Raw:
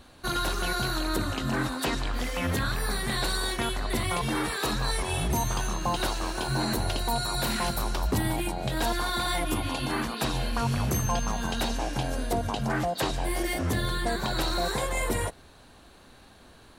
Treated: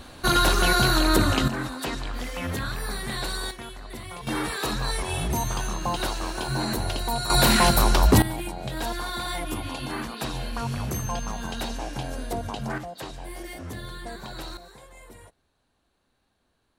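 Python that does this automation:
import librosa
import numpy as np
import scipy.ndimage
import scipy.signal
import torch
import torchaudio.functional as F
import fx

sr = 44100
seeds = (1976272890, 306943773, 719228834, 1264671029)

y = fx.gain(x, sr, db=fx.steps((0.0, 8.5), (1.48, -2.0), (3.51, -10.0), (4.27, 0.5), (7.3, 10.0), (8.22, -2.5), (12.78, -9.0), (14.57, -19.5)))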